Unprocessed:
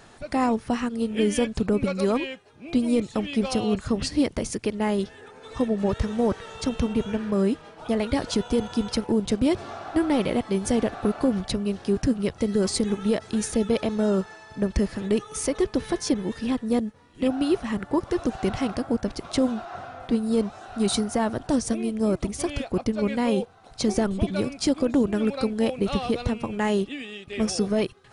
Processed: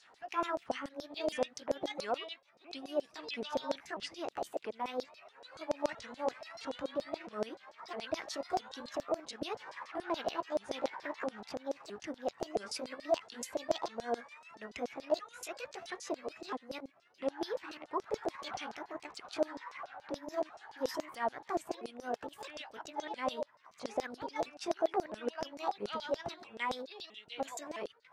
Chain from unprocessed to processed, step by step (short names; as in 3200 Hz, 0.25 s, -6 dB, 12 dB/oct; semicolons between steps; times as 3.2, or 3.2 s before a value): repeated pitch sweeps +8 st, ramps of 0.661 s; LFO band-pass saw down 7 Hz 540–5900 Hz; gain -1.5 dB